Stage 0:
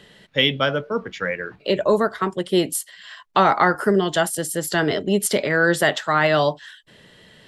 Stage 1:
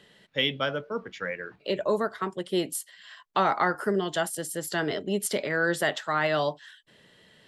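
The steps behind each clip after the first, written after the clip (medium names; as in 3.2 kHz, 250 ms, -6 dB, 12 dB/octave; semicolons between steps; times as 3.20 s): bass shelf 100 Hz -7 dB; trim -7.5 dB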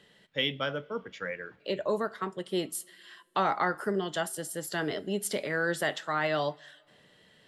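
two-slope reverb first 0.31 s, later 2.4 s, from -20 dB, DRR 17 dB; trim -3.5 dB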